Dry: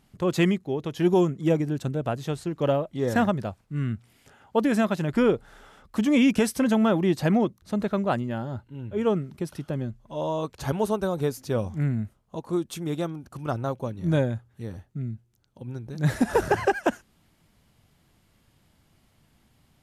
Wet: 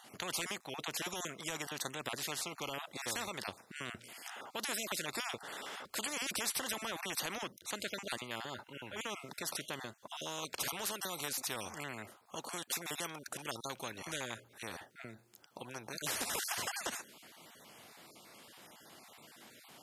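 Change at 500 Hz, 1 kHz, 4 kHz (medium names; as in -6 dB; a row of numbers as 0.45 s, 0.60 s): -19.5 dB, -12.0 dB, +0.5 dB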